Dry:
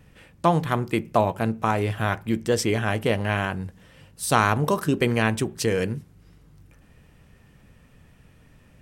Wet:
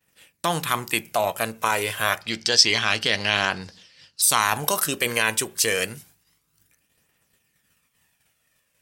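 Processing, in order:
downward expander −42 dBFS
spectral tilt +4.5 dB per octave
phase shifter 0.28 Hz, delay 2.1 ms, feedback 37%
0:02.21–0:04.22: low-pass with resonance 4,800 Hz, resonance Q 4.4
in parallel at −2.5 dB: compressor whose output falls as the input rises −23 dBFS, ratio −0.5
on the sum: level −4 dB

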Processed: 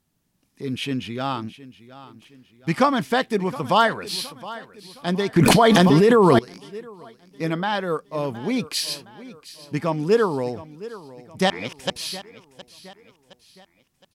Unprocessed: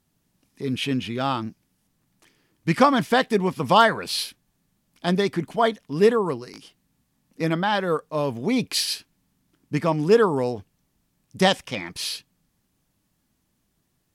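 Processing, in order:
0:11.50–0:11.90: reverse
repeating echo 716 ms, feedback 45%, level −17 dB
0:05.36–0:06.39: envelope flattener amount 100%
level −1.5 dB

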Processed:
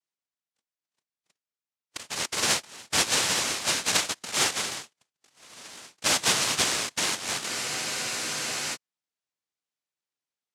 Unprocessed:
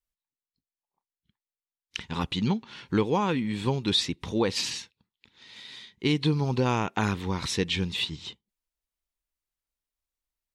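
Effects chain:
cochlear-implant simulation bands 1
frozen spectrum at 0:07.51, 1.24 s

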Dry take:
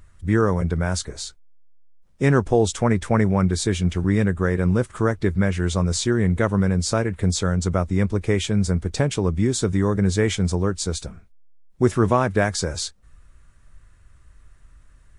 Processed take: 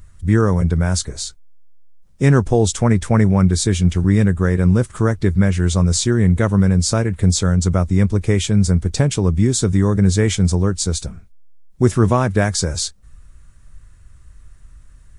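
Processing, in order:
bass and treble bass +6 dB, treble +6 dB
level +1 dB

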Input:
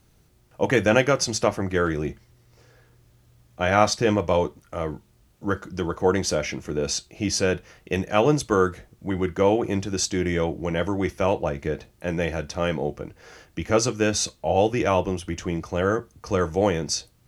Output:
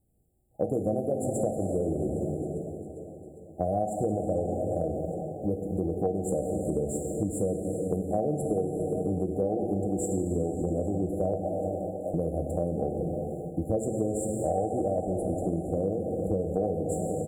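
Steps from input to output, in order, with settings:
0:11.38–0:12.14: elliptic high-pass filter 600 Hz
noise gate −52 dBFS, range −12 dB
dense smooth reverb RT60 3.1 s, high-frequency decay 0.85×, DRR 3 dB
in parallel at −10 dB: dead-zone distortion −35.5 dBFS
on the sum: brick-wall band-stop 820–7,100 Hz
on a send: repeating echo 403 ms, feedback 57%, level −18 dB
on the sum: downward compressor 6 to 1, threshold −25 dBFS, peak gain reduction 13.5 dB

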